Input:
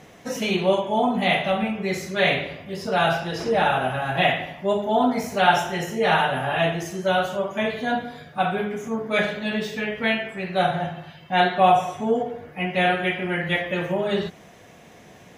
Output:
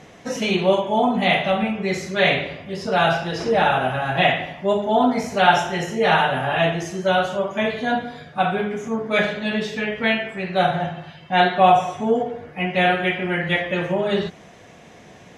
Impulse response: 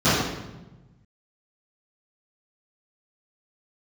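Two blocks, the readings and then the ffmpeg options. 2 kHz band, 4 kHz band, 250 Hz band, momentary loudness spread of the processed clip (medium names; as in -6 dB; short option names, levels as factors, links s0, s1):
+2.5 dB, +2.5 dB, +2.5 dB, 8 LU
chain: -af "lowpass=8400,volume=1.33"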